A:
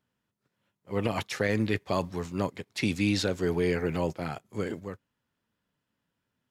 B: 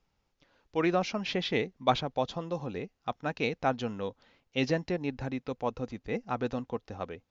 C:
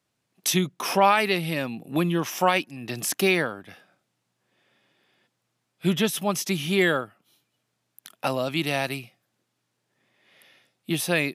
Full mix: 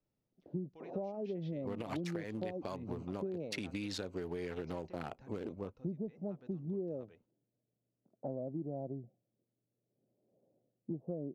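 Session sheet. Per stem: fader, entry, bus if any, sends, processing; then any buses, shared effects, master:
+1.0 dB, 0.75 s, no send, adaptive Wiener filter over 25 samples; parametric band 130 Hz −7.5 dB 0.96 octaves; downward compressor 6 to 1, threshold −34 dBFS, peak gain reduction 11 dB
−17.5 dB, 0.00 s, no send, downward compressor 3 to 1, threshold −38 dBFS, peak gain reduction 14 dB
−6.5 dB, 0.00 s, no send, Butterworth low-pass 620 Hz 36 dB per octave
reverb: not used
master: downward compressor, threshold −36 dBFS, peak gain reduction 11.5 dB

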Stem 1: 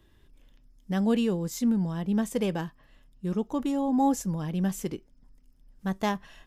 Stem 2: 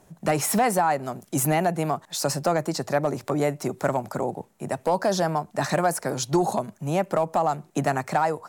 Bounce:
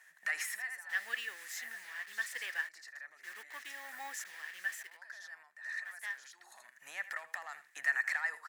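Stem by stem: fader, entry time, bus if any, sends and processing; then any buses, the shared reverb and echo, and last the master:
0:04.73 −7 dB → 0:04.97 −18 dB, 0.00 s, no send, no echo send, hold until the input has moved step −40.5 dBFS; high-pass filter 280 Hz 12 dB per octave
−5.5 dB, 0.00 s, no send, echo send −15 dB, brickwall limiter −23.5 dBFS, peak gain reduction 10.5 dB; automatic ducking −20 dB, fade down 0.50 s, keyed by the first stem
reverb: not used
echo: single-tap delay 81 ms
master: high-pass with resonance 1,800 Hz, resonance Q 13

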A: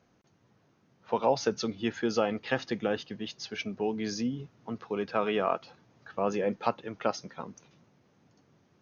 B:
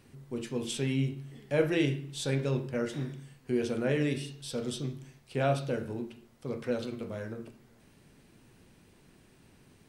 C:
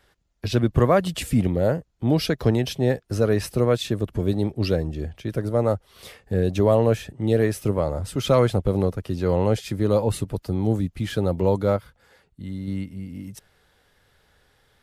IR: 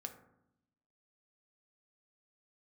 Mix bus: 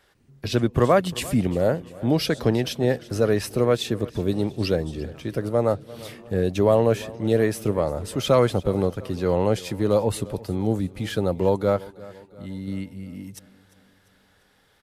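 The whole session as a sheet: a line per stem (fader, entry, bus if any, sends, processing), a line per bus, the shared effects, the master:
−19.0 dB, 0.00 s, no send, no echo send, downward compressor, threshold −31 dBFS, peak gain reduction 11.5 dB
−14.0 dB, 0.15 s, no send, echo send −12 dB, low-shelf EQ 330 Hz +7 dB; compressor whose output falls as the input rises −34 dBFS
+1.0 dB, 0.00 s, no send, echo send −20 dB, low-shelf EQ 120 Hz −8 dB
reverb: not used
echo: repeating echo 347 ms, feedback 51%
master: no processing

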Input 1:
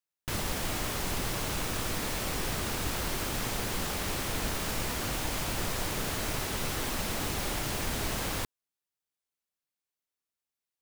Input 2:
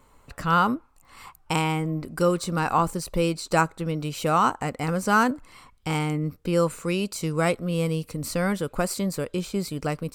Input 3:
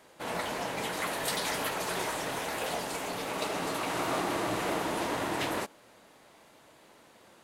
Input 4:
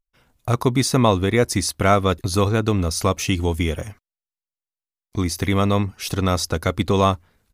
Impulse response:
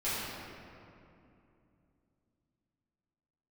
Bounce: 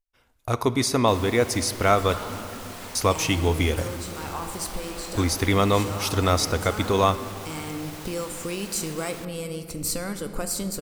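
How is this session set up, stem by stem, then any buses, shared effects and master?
−5.5 dB, 0.80 s, no send, Butterworth high-pass 360 Hz 96 dB per octave; brickwall limiter −26.5 dBFS, peak gain reduction 4 dB
−0.5 dB, 1.60 s, send −14.5 dB, downward compressor 3 to 1, threshold −30 dBFS, peak gain reduction 11.5 dB; bass and treble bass +8 dB, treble +9 dB; automatic ducking −10 dB, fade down 0.55 s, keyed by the fourth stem
−13.5 dB, 0.85 s, no send, no processing
−5.0 dB, 0.00 s, muted 0:02.19–0:02.95, send −20 dB, automatic gain control gain up to 7 dB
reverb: on, RT60 2.7 s, pre-delay 4 ms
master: parametric band 160 Hz −11 dB 0.74 octaves

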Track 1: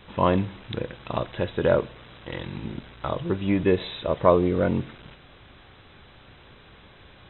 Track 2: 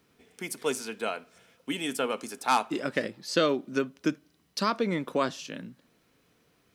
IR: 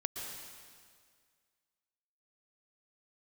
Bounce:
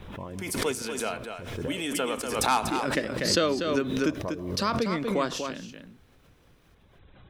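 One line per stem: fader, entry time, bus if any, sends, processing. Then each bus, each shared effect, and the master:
−4.5 dB, 0.00 s, send −19.5 dB, no echo send, downward compressor 1.5 to 1, threshold −45 dBFS, peak gain reduction 11.5 dB; spectral tilt −2 dB per octave; reverb reduction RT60 0.74 s; automatic ducking −12 dB, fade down 0.35 s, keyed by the second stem
−0.5 dB, 0.00 s, no send, echo send −7 dB, no processing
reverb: on, RT60 1.9 s, pre-delay 108 ms
echo: single-tap delay 242 ms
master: background raised ahead of every attack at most 43 dB per second

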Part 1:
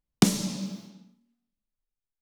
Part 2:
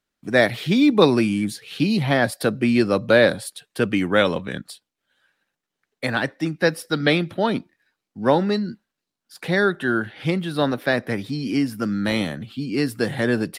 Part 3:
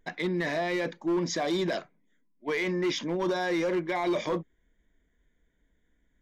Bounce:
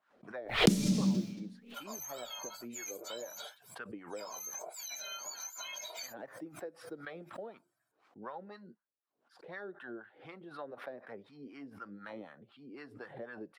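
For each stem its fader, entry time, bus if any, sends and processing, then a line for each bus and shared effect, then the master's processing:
+2.5 dB, 0.45 s, no bus, no send, parametric band 940 Hz −14 dB 1.4 octaves; downward compressor 3 to 1, threshold −29 dBFS, peak gain reduction 11.5 dB; tilt shelving filter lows +4 dB, about 1,400 Hz
−7.5 dB, 0.00 s, bus A, no send, LFO wah 4 Hz 410–1,300 Hz, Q 2.5
−0.5 dB, 1.70 s, bus A, no send, frequency axis turned over on the octave scale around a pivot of 1,500 Hz; high-pass filter 480 Hz 6 dB per octave; comb filter 1.3 ms, depth 69%
bus A: 0.0 dB, flanger 0.82 Hz, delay 1 ms, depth 2 ms, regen −73%; downward compressor 6 to 1, threshold −41 dBFS, peak gain reduction 14 dB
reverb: not used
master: background raised ahead of every attack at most 120 dB per second

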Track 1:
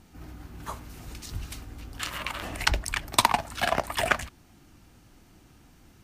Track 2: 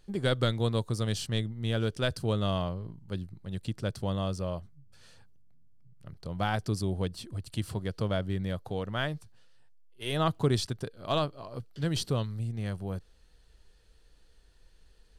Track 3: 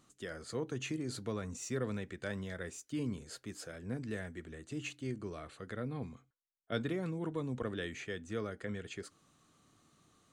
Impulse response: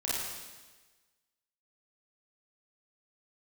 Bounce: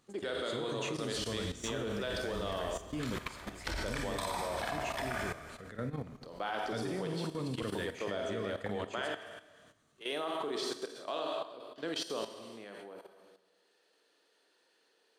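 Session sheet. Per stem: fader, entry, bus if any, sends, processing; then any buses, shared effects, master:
−8.5 dB, 1.00 s, bus A, send −5.5 dB, notch filter 2,800 Hz, Q 7
0.0 dB, 0.00 s, bus A, send −8.5 dB, high-pass filter 310 Hz 24 dB per octave
+1.5 dB, 0.00 s, no bus, send −12.5 dB, parametric band 350 Hz −3.5 dB 0.2 octaves
bus A: 0.0 dB, Gaussian smoothing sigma 1.8 samples; brickwall limiter −23.5 dBFS, peak gain reduction 10.5 dB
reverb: on, RT60 1.3 s, pre-delay 29 ms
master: output level in coarse steps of 12 dB

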